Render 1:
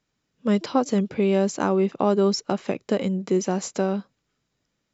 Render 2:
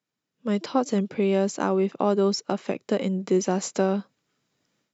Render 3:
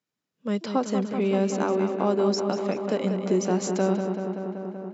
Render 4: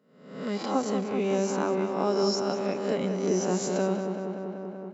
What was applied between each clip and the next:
high-pass filter 140 Hz 12 dB per octave; automatic gain control gain up to 14 dB; level −8.5 dB
feedback echo with a low-pass in the loop 191 ms, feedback 80%, low-pass 3,900 Hz, level −7 dB; level −2 dB
peak hold with a rise ahead of every peak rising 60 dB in 0.71 s; convolution reverb RT60 0.65 s, pre-delay 7 ms, DRR 13.5 dB; level −4 dB

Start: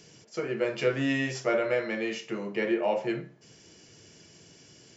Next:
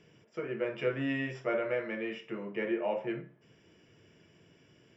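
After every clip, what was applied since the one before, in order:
Savitzky-Golay smoothing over 25 samples
notch filter 780 Hz, Q 12
level −5 dB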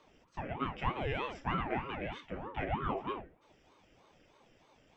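ring modulator whose carrier an LFO sweeps 450 Hz, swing 70%, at 3.2 Hz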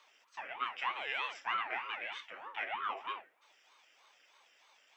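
high-pass filter 1,300 Hz 12 dB per octave
level +5 dB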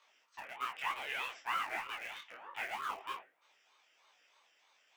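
in parallel at −11 dB: bit reduction 6 bits
on the sum: micro pitch shift up and down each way 41 cents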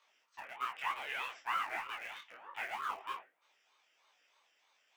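dynamic equaliser 1,200 Hz, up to +4 dB, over −50 dBFS, Q 0.75
level −3 dB

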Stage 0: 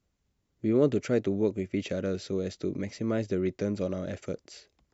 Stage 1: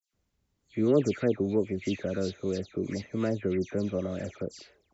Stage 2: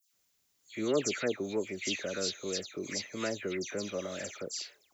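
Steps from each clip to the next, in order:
all-pass dispersion lows, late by 135 ms, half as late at 2,800 Hz
spectral tilt +4.5 dB per octave

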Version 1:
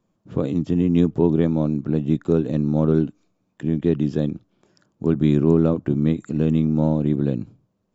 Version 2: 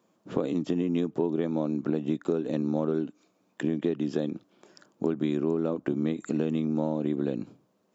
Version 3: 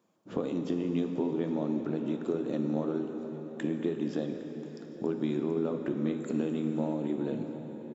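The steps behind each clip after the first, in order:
high-pass filter 280 Hz 12 dB per octave; downward compressor 6 to 1, threshold −30 dBFS, peak gain reduction 15 dB; level +6 dB
flanger 0.49 Hz, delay 0.4 ms, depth 9.9 ms, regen −76%; single-tap delay 808 ms −21 dB; dense smooth reverb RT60 4.9 s, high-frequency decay 0.8×, DRR 4.5 dB

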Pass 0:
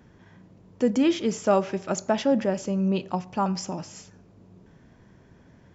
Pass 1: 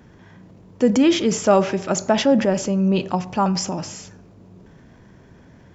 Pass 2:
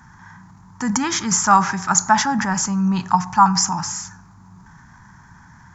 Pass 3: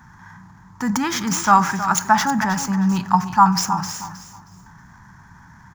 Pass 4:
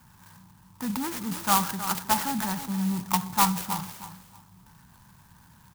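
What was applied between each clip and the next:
transient designer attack 0 dB, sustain +5 dB; level +5.5 dB
drawn EQ curve 180 Hz 0 dB, 550 Hz −25 dB, 870 Hz +10 dB, 1,700 Hz +8 dB, 2,800 Hz −9 dB, 6,700 Hz +10 dB, 9,700 Hz 0 dB; level +1.5 dB
running median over 5 samples; repeating echo 316 ms, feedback 24%, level −12 dB
high-frequency loss of the air 68 metres; converter with an unsteady clock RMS 0.11 ms; level −8.5 dB

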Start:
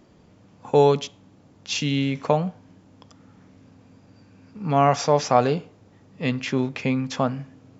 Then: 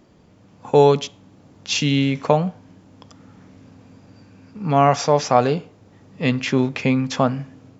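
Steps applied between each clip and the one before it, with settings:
automatic gain control gain up to 4 dB
level +1 dB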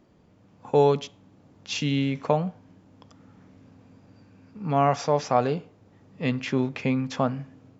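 high-shelf EQ 3,800 Hz −5.5 dB
level −6 dB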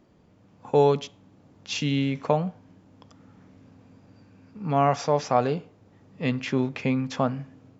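no processing that can be heard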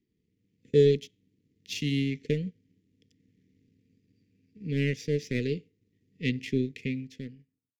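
fade-out on the ending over 1.29 s
power curve on the samples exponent 1.4
Chebyshev band-stop filter 450–1,900 Hz, order 4
level +2.5 dB

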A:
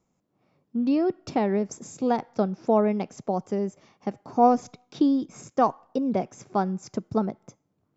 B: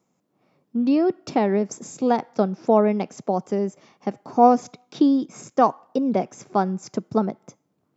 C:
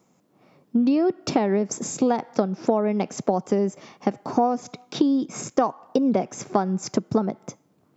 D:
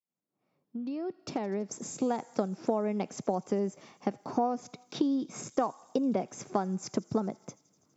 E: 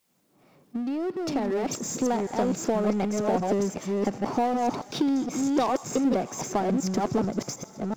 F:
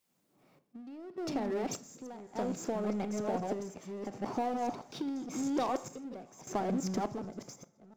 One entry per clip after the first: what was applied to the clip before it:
high-pass filter 150 Hz 12 dB per octave; level +4 dB
downward compressor 12 to 1, threshold −25 dBFS, peak gain reduction 17 dB; level +8 dB
fade in at the beginning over 2.28 s; delay with a high-pass on its return 82 ms, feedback 82%, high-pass 4,100 Hz, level −18.5 dB; level −8 dB
delay that plays each chunk backwards 378 ms, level −2 dB; power curve on the samples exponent 0.7
sample-and-hold tremolo 1.7 Hz, depth 90%; convolution reverb RT60 0.50 s, pre-delay 26 ms, DRR 14 dB; level −7 dB

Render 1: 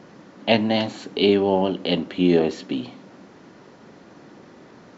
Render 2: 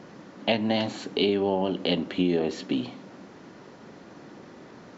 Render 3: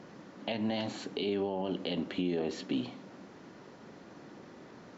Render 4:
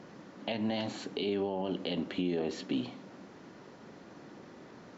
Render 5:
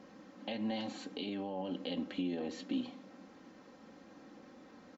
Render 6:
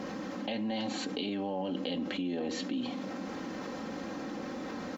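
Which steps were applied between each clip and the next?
downward compressor 6 to 1, threshold −20 dBFS, peak gain reduction 8.5 dB
brickwall limiter −19 dBFS, peak gain reduction 9.5 dB; level −4.5 dB
no processing that can be heard
comb filter 3.8 ms, depth 66%; level −6.5 dB
envelope flattener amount 70%

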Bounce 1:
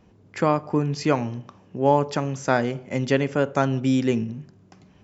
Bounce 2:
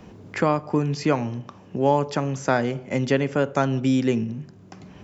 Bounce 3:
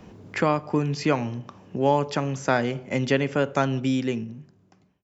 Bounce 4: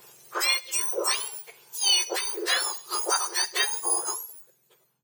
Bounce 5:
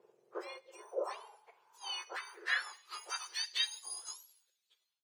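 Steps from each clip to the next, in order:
multiband upward and downward compressor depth 40%
fade-out on the ending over 1.41 s; dynamic equaliser 2,900 Hz, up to +4 dB, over −41 dBFS, Q 0.89; level −1.5 dB
frequency axis turned over on the octave scale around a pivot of 1,600 Hz; level +2.5 dB
band-pass filter sweep 440 Hz → 3,800 Hz, 0:00.48–0:03.68; level −3 dB

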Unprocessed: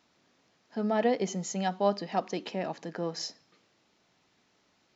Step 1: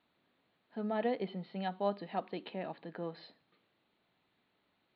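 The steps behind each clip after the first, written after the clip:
Butterworth low-pass 4,300 Hz 96 dB per octave
level −7 dB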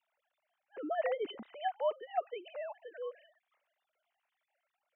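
three sine waves on the formant tracks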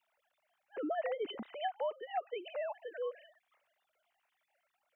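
downward compressor 6 to 1, threshold −37 dBFS, peak gain reduction 10 dB
level +4 dB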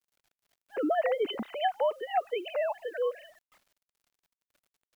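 bit-depth reduction 12 bits, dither none
level +8.5 dB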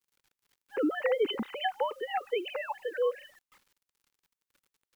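Butterworth band-reject 660 Hz, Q 2.9
level +2 dB

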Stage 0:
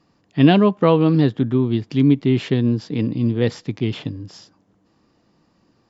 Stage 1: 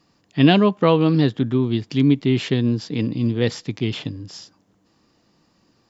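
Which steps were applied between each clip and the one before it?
high-shelf EQ 2,600 Hz +8 dB
level −1.5 dB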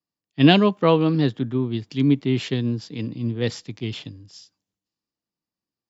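multiband upward and downward expander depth 70%
level −3 dB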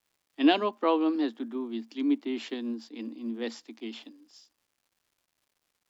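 Chebyshev high-pass with heavy ripple 220 Hz, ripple 6 dB
surface crackle 320 per second −56 dBFS
level −4 dB

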